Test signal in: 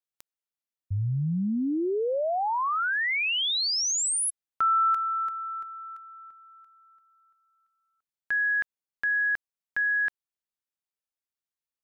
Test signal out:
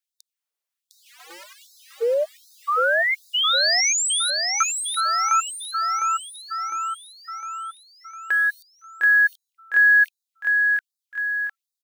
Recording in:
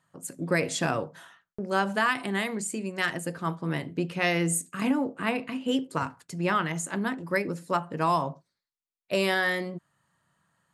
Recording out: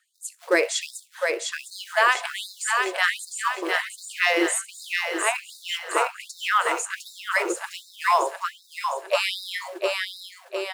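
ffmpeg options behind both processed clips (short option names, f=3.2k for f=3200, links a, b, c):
-filter_complex "[0:a]equalizer=f=180:w=1.5:g=12,asplit=2[a][b];[b]acrusher=bits=4:mode=log:mix=0:aa=0.000001,volume=-12dB[c];[a][c]amix=inputs=2:normalize=0,acrossover=split=9300[d][e];[e]acompressor=threshold=-50dB:ratio=4:attack=1:release=60[f];[d][f]amix=inputs=2:normalize=0,aecho=1:1:706|1412|2118|2824|3530|4236|4942:0.631|0.328|0.171|0.0887|0.0461|0.024|0.0125,afftfilt=real='re*gte(b*sr/1024,320*pow(3700/320,0.5+0.5*sin(2*PI*1.3*pts/sr)))':imag='im*gte(b*sr/1024,320*pow(3700/320,0.5+0.5*sin(2*PI*1.3*pts/sr)))':win_size=1024:overlap=0.75,volume=4dB"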